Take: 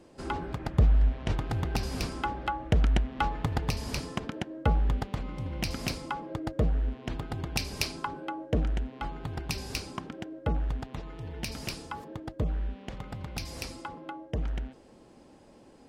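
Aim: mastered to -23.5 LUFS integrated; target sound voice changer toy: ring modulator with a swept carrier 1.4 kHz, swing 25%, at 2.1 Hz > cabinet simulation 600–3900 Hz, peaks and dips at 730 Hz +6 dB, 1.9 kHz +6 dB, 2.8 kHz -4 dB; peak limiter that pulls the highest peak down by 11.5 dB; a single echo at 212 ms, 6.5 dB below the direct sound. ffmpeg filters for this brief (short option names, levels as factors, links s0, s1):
-af "alimiter=limit=0.075:level=0:latency=1,aecho=1:1:212:0.473,aeval=exprs='val(0)*sin(2*PI*1400*n/s+1400*0.25/2.1*sin(2*PI*2.1*n/s))':c=same,highpass=600,equalizer=f=730:t=q:w=4:g=6,equalizer=f=1900:t=q:w=4:g=6,equalizer=f=2800:t=q:w=4:g=-4,lowpass=f=3900:w=0.5412,lowpass=f=3900:w=1.3066,volume=2.66"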